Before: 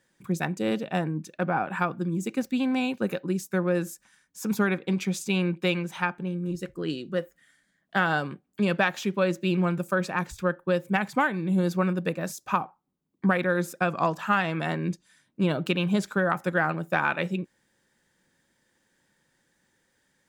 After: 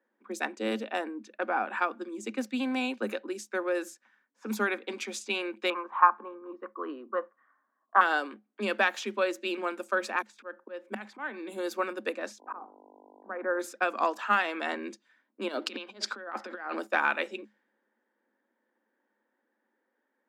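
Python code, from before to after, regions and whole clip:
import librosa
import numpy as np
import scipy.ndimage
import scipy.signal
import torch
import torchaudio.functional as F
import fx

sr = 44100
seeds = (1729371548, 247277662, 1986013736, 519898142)

y = fx.chain(x, sr, fx.lowpass_res(hz=1100.0, q=13.0),
    fx.low_shelf(hz=400.0, db=-6.5), at=(5.7, 8.01))
y = fx.chain(y, sr, fx.high_shelf(hz=8600.0, db=10.5),
    fx.auto_swell(attack_ms=240.0), at=(10.22, 11.54))
y = fx.lowpass(y, sr, hz=1500.0, slope=24, at=(12.39, 13.59), fade=0.02)
y = fx.auto_swell(y, sr, attack_ms=255.0, at=(12.39, 13.59), fade=0.02)
y = fx.dmg_buzz(y, sr, base_hz=50.0, harmonics=20, level_db=-49.0, tilt_db=-3, odd_only=False, at=(12.39, 13.59), fade=0.02)
y = fx.chain(y, sr, fx.peak_eq(hz=4800.0, db=11.5, octaves=0.41),
    fx.over_compress(threshold_db=-30.0, ratio=-0.5), at=(15.48, 16.87))
y = fx.env_lowpass(y, sr, base_hz=1100.0, full_db=-22.0)
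y = scipy.signal.sosfilt(scipy.signal.cheby1(10, 1.0, 210.0, 'highpass', fs=sr, output='sos'), y)
y = fx.low_shelf(y, sr, hz=450.0, db=-6.0)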